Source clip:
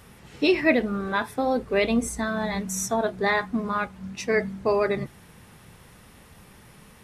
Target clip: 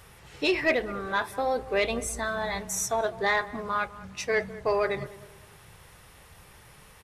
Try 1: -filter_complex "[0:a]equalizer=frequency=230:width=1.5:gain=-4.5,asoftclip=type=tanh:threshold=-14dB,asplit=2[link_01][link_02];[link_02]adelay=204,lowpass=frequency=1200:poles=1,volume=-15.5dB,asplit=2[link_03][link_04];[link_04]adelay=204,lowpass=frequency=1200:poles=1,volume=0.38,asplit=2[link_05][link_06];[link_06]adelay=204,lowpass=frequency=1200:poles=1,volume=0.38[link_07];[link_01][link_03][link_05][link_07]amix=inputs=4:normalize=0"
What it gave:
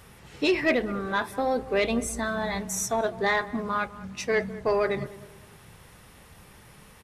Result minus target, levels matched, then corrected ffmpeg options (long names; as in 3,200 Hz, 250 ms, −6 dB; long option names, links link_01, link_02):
250 Hz band +4.5 dB
-filter_complex "[0:a]equalizer=frequency=230:width=1.5:gain=-13,asoftclip=type=tanh:threshold=-14dB,asplit=2[link_01][link_02];[link_02]adelay=204,lowpass=frequency=1200:poles=1,volume=-15.5dB,asplit=2[link_03][link_04];[link_04]adelay=204,lowpass=frequency=1200:poles=1,volume=0.38,asplit=2[link_05][link_06];[link_06]adelay=204,lowpass=frequency=1200:poles=1,volume=0.38[link_07];[link_01][link_03][link_05][link_07]amix=inputs=4:normalize=0"